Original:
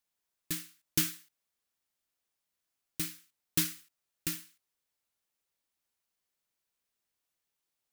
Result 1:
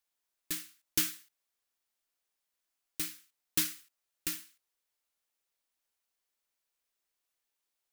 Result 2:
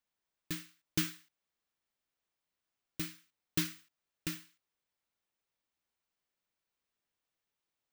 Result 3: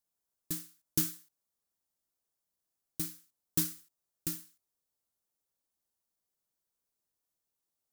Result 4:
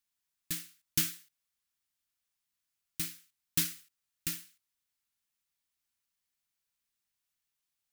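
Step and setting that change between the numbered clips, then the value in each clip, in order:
bell, frequency: 130, 13000, 2400, 500 Hz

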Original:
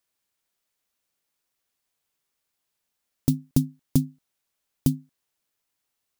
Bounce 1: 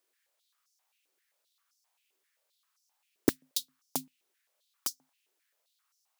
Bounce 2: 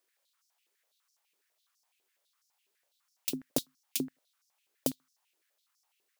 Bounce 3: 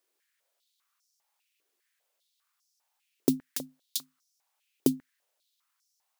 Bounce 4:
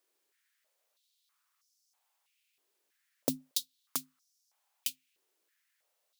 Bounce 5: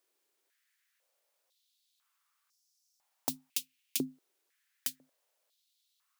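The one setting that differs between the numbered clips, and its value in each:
stepped high-pass, rate: 7.6, 12, 5, 3.1, 2 Hz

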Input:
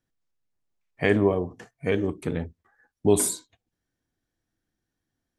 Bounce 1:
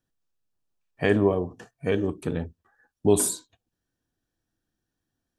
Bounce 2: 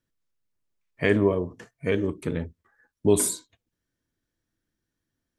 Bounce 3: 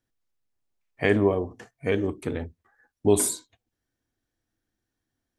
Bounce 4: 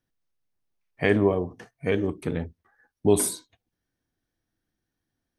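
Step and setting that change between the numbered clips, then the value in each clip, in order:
notch, frequency: 2100, 760, 170, 7300 Hz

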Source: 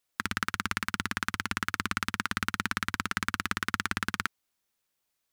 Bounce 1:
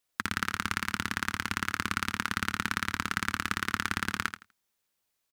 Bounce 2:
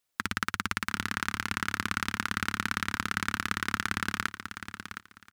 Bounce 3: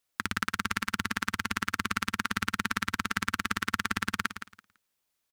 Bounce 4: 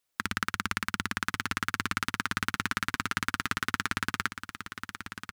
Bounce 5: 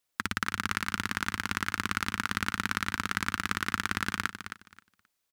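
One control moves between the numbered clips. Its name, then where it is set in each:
feedback echo, time: 82, 714, 167, 1093, 265 ms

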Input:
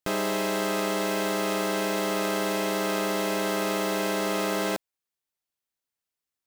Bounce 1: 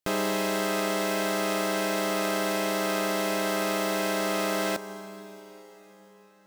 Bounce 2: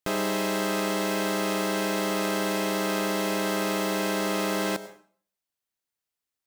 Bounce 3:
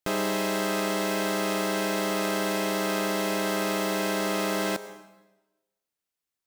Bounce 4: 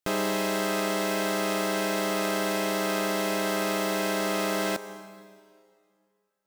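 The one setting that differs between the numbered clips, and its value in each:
plate-style reverb, RT60: 5.3, 0.5, 1.1, 2.3 s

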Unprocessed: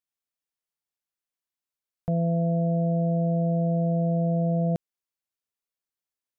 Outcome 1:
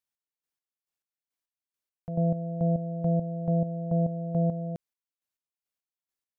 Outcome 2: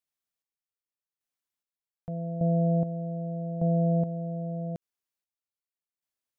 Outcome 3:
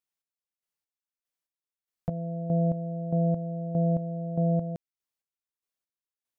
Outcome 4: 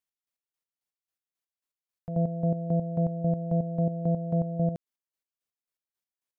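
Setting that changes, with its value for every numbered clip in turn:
chopper, rate: 2.3, 0.83, 1.6, 3.7 Hz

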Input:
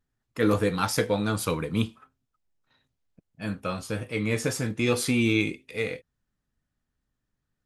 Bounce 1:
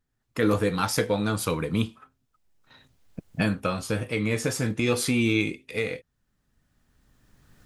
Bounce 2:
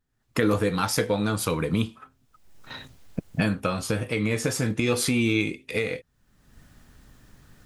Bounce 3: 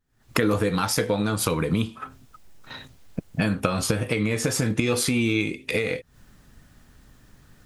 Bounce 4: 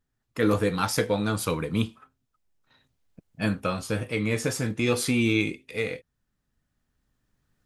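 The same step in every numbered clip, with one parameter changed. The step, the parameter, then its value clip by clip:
recorder AGC, rising by: 14, 36, 89, 5.1 dB/s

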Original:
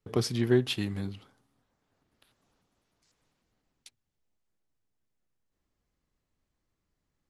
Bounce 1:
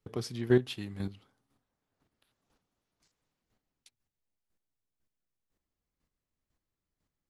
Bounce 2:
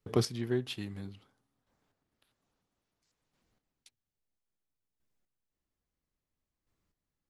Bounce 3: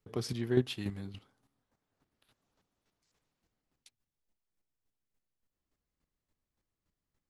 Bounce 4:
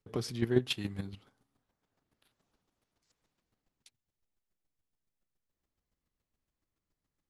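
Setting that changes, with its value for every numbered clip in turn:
chopper, rate: 2, 0.6, 3.5, 7.1 Hz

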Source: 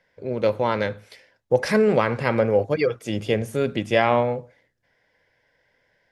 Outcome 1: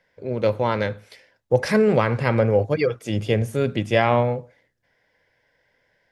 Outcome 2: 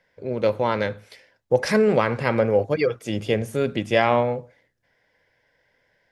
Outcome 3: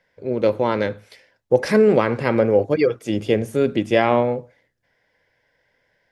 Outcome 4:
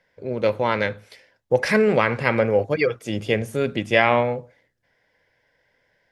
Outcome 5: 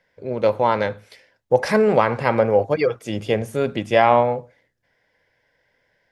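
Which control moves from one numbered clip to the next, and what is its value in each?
dynamic EQ, frequency: 110, 6200, 320, 2200, 840 Hz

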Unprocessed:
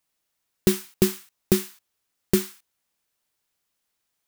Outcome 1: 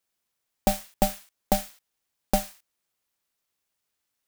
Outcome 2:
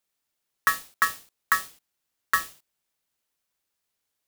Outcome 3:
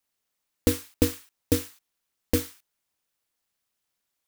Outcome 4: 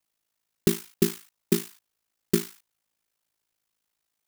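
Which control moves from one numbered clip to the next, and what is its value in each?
ring modulator, frequency: 400, 1500, 110, 27 Hz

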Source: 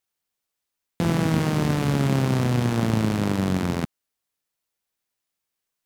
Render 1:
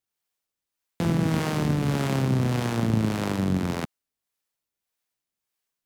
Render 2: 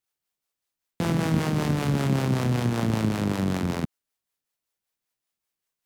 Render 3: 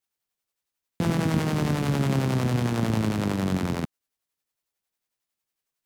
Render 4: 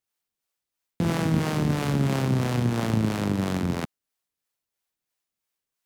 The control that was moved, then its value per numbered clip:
harmonic tremolo, rate: 1.7, 5.2, 11, 3 Hz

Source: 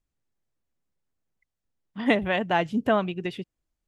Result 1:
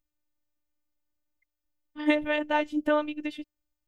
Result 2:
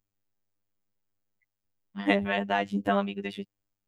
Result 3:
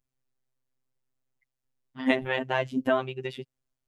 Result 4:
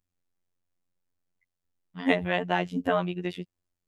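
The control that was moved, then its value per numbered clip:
robotiser, frequency: 300, 100, 130, 89 Hz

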